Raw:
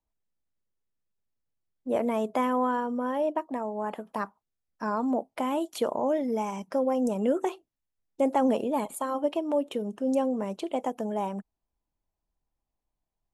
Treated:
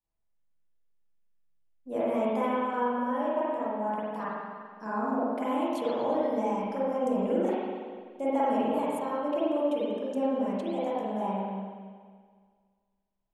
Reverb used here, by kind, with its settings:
spring reverb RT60 1.8 s, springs 41/47 ms, chirp 80 ms, DRR −9.5 dB
level −10 dB

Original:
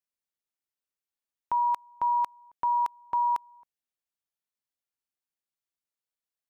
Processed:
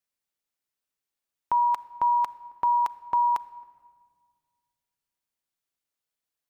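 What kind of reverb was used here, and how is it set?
rectangular room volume 2,900 cubic metres, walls mixed, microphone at 0.35 metres
level +4 dB

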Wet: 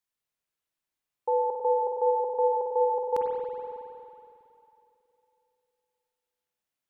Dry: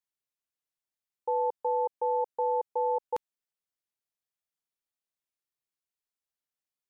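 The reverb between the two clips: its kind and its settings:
spring reverb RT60 2.9 s, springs 46/54 ms, chirp 50 ms, DRR −1 dB
level +2.5 dB

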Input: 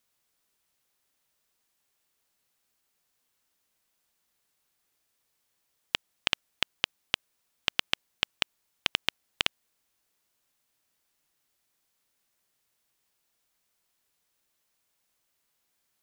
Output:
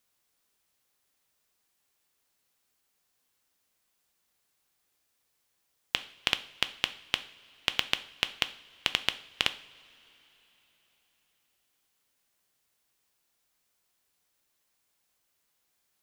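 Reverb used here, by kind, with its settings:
coupled-rooms reverb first 0.48 s, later 4.1 s, from −20 dB, DRR 10.5 dB

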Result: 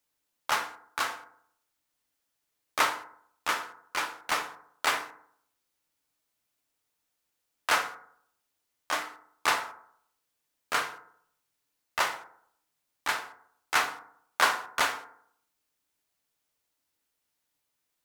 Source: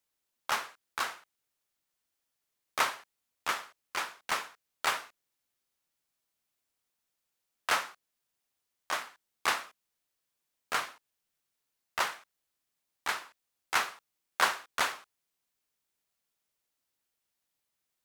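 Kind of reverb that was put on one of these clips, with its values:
feedback delay network reverb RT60 0.65 s, low-frequency decay 1×, high-frequency decay 0.35×, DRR 6 dB
level +2.5 dB

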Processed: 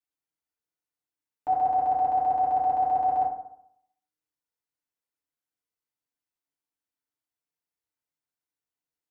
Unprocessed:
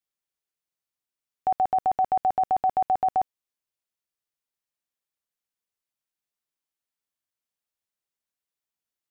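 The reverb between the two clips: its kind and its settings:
feedback delay network reverb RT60 0.72 s, low-frequency decay 1.05×, high-frequency decay 0.4×, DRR −7 dB
level −10 dB

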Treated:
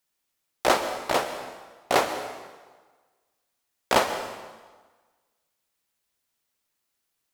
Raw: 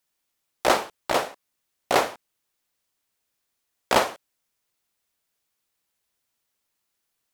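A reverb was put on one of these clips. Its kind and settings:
dense smooth reverb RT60 1.4 s, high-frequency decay 0.85×, pre-delay 110 ms, DRR 9.5 dB
level −1 dB

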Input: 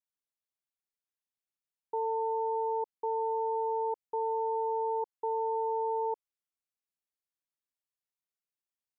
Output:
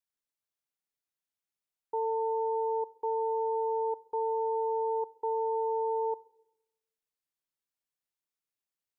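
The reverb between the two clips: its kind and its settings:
rectangular room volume 3,100 cubic metres, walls furnished, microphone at 0.4 metres

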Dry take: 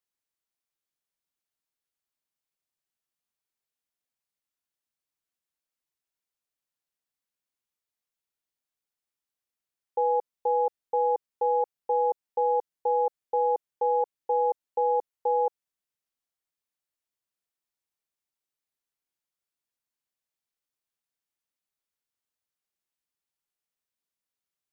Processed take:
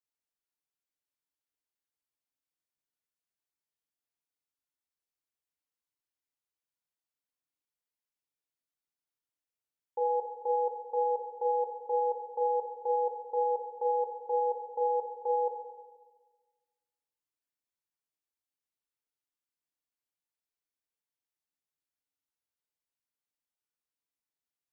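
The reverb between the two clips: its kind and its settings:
feedback delay network reverb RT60 1.4 s, low-frequency decay 1.05×, high-frequency decay 0.5×, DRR 1.5 dB
level −8 dB

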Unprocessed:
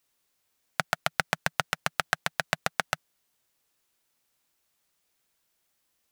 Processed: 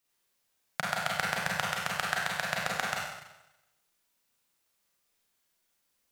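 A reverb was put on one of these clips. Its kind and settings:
four-comb reverb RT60 0.93 s, combs from 32 ms, DRR −3.5 dB
level −6 dB

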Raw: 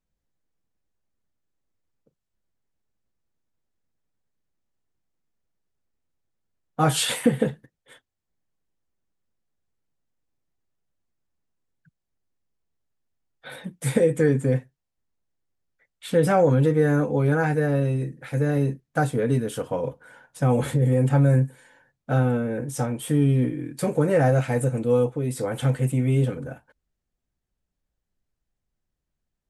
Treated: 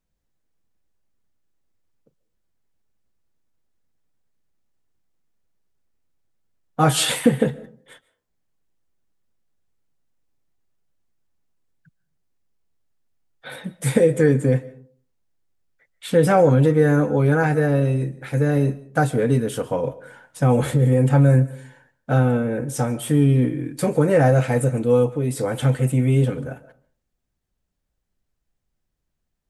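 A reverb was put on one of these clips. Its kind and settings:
comb and all-pass reverb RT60 0.46 s, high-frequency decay 0.4×, pre-delay 100 ms, DRR 18.5 dB
level +3.5 dB

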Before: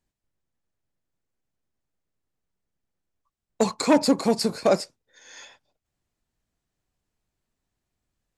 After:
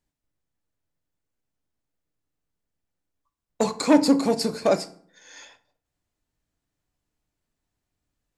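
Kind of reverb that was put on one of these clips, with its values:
feedback delay network reverb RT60 0.55 s, low-frequency decay 1.35×, high-frequency decay 0.65×, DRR 9.5 dB
level −1 dB

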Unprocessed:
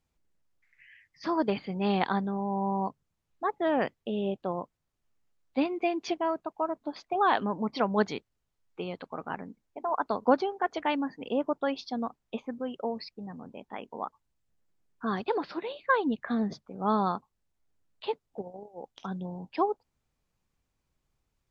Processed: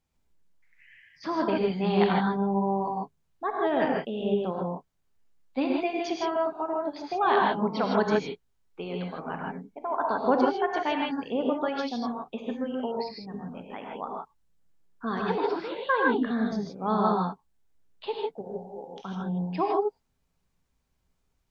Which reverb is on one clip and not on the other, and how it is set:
reverb whose tail is shaped and stops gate 180 ms rising, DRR −1 dB
level −1 dB

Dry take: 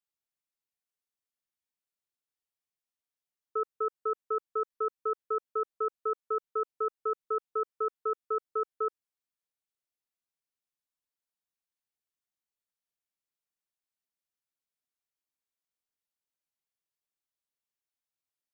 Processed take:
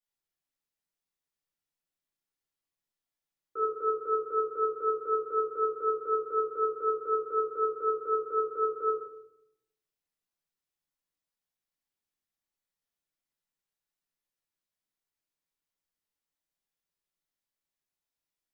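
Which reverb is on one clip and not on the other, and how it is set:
rectangular room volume 190 cubic metres, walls mixed, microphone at 2.4 metres
level −6.5 dB

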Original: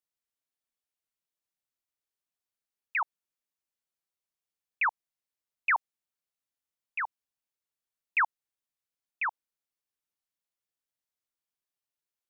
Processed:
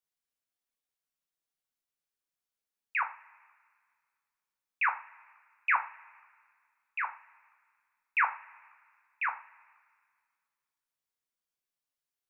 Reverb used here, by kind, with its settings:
coupled-rooms reverb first 0.31 s, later 1.9 s, from −22 dB, DRR 2.5 dB
level −2.5 dB

